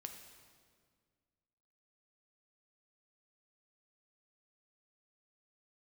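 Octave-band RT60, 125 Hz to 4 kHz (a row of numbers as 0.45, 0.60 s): 2.3, 2.3, 2.0, 1.7, 1.6, 1.5 s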